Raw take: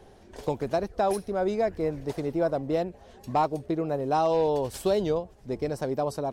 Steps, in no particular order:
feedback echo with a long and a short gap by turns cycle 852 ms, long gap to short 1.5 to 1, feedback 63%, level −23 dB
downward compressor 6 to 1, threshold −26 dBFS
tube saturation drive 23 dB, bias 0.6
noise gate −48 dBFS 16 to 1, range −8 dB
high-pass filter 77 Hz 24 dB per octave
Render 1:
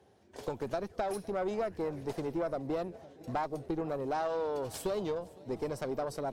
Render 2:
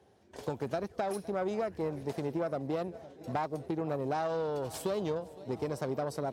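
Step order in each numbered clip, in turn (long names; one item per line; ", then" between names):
high-pass filter, then noise gate, then downward compressor, then feedback echo with a long and a short gap by turns, then tube saturation
noise gate, then feedback echo with a long and a short gap by turns, then downward compressor, then tube saturation, then high-pass filter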